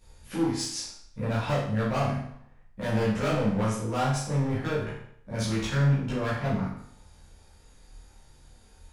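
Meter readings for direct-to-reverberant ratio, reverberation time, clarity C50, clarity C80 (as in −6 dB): −11.0 dB, 0.65 s, 2.0 dB, 6.0 dB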